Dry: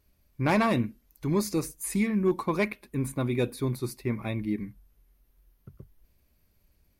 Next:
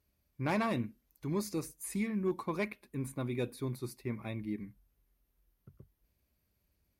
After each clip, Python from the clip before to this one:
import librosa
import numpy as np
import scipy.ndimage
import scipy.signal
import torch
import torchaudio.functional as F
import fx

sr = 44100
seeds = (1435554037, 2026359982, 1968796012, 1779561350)

y = scipy.signal.sosfilt(scipy.signal.butter(2, 48.0, 'highpass', fs=sr, output='sos'), x)
y = F.gain(torch.from_numpy(y), -8.0).numpy()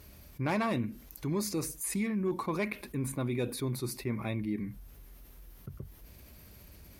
y = fx.env_flatten(x, sr, amount_pct=50)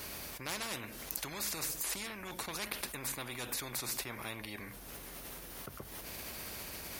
y = fx.spectral_comp(x, sr, ratio=4.0)
y = F.gain(torch.from_numpy(y), 6.5).numpy()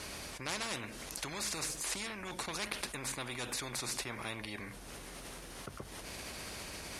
y = scipy.signal.sosfilt(scipy.signal.butter(4, 10000.0, 'lowpass', fs=sr, output='sos'), x)
y = F.gain(torch.from_numpy(y), 1.5).numpy()